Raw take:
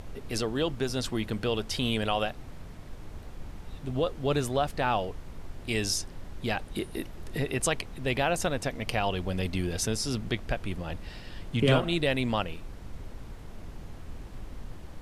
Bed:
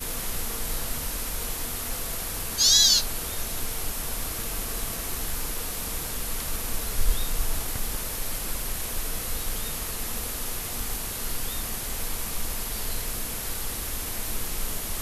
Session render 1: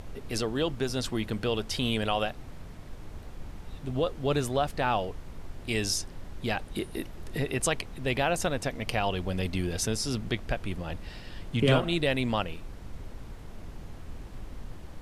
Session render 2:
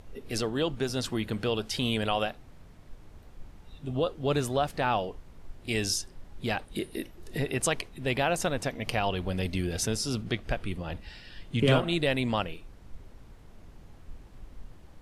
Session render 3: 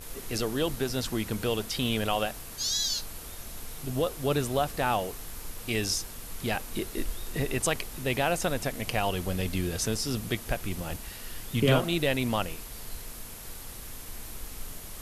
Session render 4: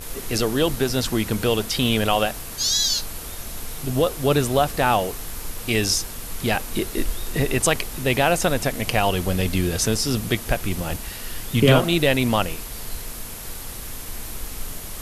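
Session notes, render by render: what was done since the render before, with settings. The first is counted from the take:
no processing that can be heard
noise reduction from a noise print 8 dB
mix in bed −11 dB
level +8 dB; brickwall limiter −3 dBFS, peak gain reduction 1.5 dB

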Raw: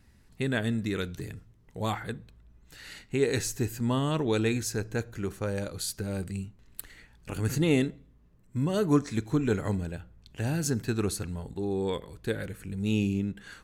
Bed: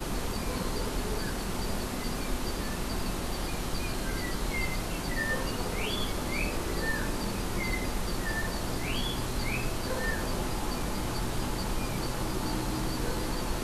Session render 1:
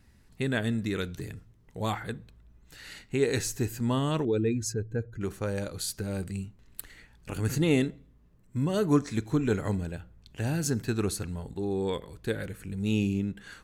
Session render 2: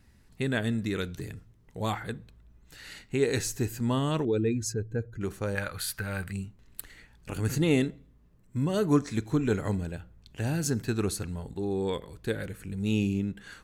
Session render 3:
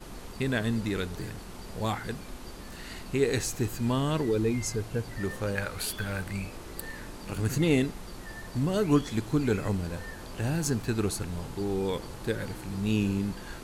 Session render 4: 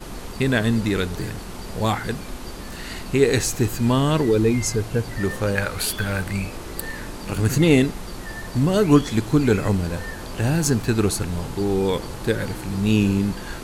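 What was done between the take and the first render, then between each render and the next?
0:04.25–0:05.21: expanding power law on the bin magnitudes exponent 1.7
0:05.55–0:06.33: drawn EQ curve 110 Hz 0 dB, 350 Hz −8 dB, 1,600 Hz +12 dB, 6,700 Hz −5 dB, 14,000 Hz +6 dB
mix in bed −10.5 dB
level +8.5 dB

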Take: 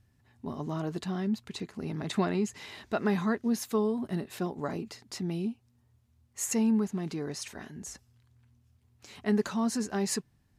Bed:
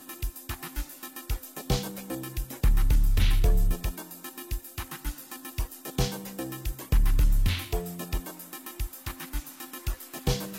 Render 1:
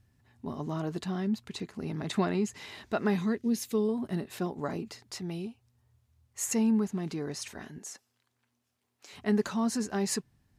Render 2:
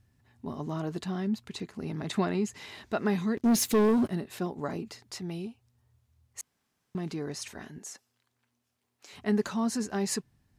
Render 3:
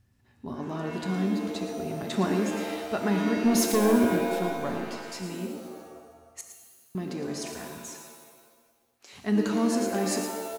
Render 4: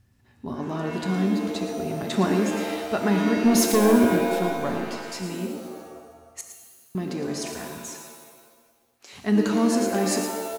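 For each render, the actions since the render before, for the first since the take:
0:03.16–0:03.89: flat-topped bell 1,000 Hz −8.5 dB; 0:05.02–0:06.43: parametric band 240 Hz −9 dB; 0:07.78–0:09.13: high-pass filter 380 Hz
0:03.37–0:04.09: leveller curve on the samples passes 3; 0:06.41–0:06.95: fill with room tone
single-tap delay 113 ms −10.5 dB; reverb with rising layers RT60 1.3 s, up +7 semitones, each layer −2 dB, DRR 5.5 dB
level +4 dB

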